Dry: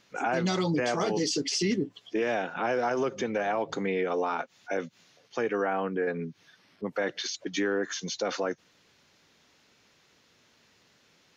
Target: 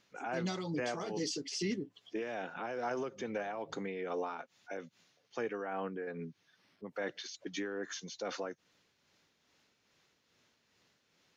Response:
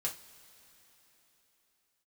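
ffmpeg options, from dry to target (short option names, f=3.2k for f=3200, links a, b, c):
-af "tremolo=f=2.4:d=0.44,volume=-7.5dB"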